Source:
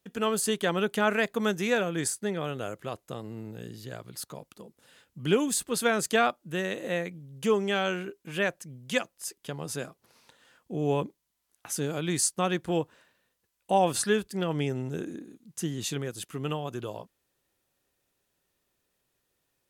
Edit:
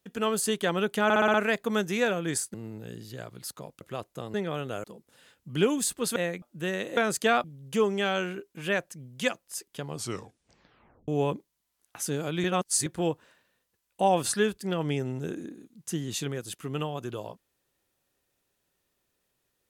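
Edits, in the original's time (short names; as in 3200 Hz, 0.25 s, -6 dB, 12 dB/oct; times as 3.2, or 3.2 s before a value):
1.04 stutter 0.06 s, 6 plays
2.24–2.74 swap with 3.27–4.54
5.86–6.33 swap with 6.88–7.14
9.59 tape stop 1.19 s
12.14–12.56 reverse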